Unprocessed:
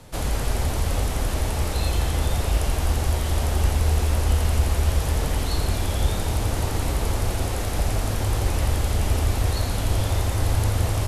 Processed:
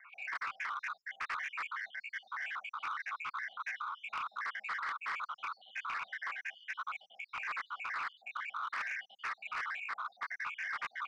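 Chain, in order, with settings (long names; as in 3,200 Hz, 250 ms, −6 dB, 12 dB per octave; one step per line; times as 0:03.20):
time-frequency cells dropped at random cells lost 69%
elliptic band-pass filter 1,000–2,300 Hz, stop band 70 dB
frequency shifter +140 Hz
soft clipping −38 dBFS, distortion −15 dB
highs frequency-modulated by the lows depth 0.26 ms
level +6.5 dB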